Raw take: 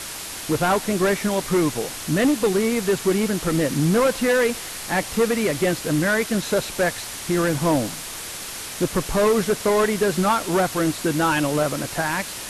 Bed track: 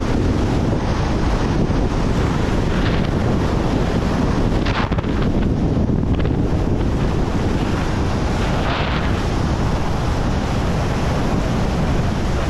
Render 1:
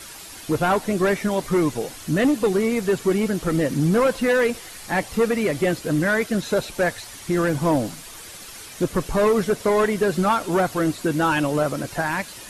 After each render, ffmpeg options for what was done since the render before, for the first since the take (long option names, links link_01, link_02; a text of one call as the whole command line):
ffmpeg -i in.wav -af "afftdn=noise_reduction=9:noise_floor=-33" out.wav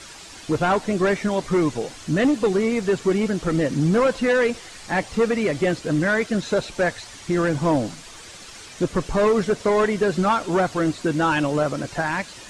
ffmpeg -i in.wav -af "lowpass=frequency=8100:width=0.5412,lowpass=frequency=8100:width=1.3066" out.wav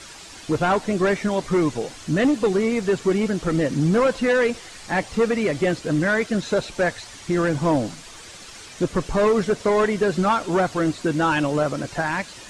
ffmpeg -i in.wav -af anull out.wav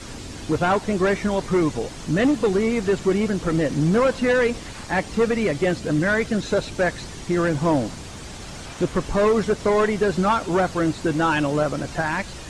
ffmpeg -i in.wav -i bed.wav -filter_complex "[1:a]volume=-19.5dB[link_01];[0:a][link_01]amix=inputs=2:normalize=0" out.wav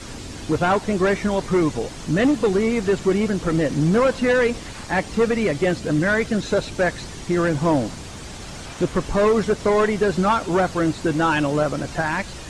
ffmpeg -i in.wav -af "volume=1dB" out.wav